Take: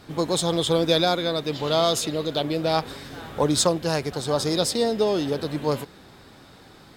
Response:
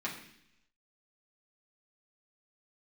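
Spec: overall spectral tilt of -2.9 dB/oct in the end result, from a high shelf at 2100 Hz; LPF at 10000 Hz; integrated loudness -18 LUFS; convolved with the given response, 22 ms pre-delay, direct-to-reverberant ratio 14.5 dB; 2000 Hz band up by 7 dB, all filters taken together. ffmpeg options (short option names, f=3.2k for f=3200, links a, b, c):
-filter_complex "[0:a]lowpass=10k,equalizer=f=2k:t=o:g=5.5,highshelf=f=2.1k:g=6.5,asplit=2[a][b];[1:a]atrim=start_sample=2205,adelay=22[c];[b][c]afir=irnorm=-1:irlink=0,volume=-18.5dB[d];[a][d]amix=inputs=2:normalize=0,volume=2.5dB"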